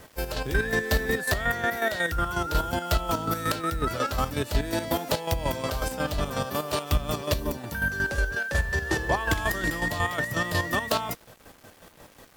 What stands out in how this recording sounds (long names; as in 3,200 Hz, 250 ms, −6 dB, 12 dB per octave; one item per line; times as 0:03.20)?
chopped level 5.5 Hz, depth 60%, duty 35%
a quantiser's noise floor 10 bits, dither none
WMA